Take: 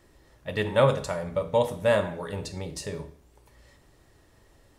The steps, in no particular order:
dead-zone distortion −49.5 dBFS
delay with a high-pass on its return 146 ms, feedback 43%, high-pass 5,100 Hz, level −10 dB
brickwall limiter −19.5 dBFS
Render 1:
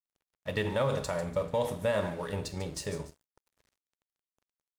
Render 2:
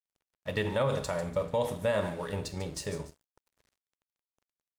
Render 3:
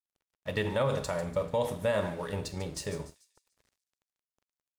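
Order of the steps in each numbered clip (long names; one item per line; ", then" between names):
brickwall limiter, then delay with a high-pass on its return, then dead-zone distortion
delay with a high-pass on its return, then dead-zone distortion, then brickwall limiter
dead-zone distortion, then brickwall limiter, then delay with a high-pass on its return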